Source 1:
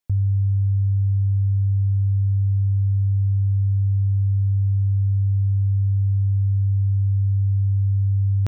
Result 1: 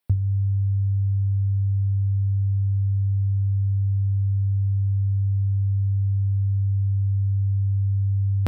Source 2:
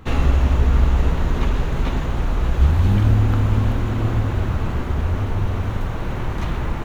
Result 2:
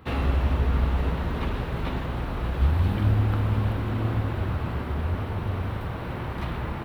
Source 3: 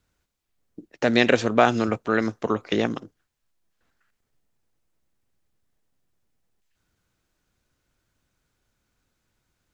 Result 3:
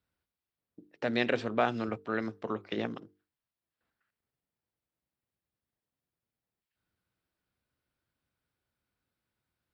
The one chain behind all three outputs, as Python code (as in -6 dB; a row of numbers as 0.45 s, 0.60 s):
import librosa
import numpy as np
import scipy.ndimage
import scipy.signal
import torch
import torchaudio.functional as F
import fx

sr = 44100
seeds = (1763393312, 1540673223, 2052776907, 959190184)

y = scipy.signal.sosfilt(scipy.signal.butter(2, 62.0, 'highpass', fs=sr, output='sos'), x)
y = fx.peak_eq(y, sr, hz=6600.0, db=-14.5, octaves=0.39)
y = fx.hum_notches(y, sr, base_hz=50, count=9)
y = y * 10.0 ** (-12 / 20.0) / np.max(np.abs(y))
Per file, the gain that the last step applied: +5.5 dB, -4.0 dB, -10.0 dB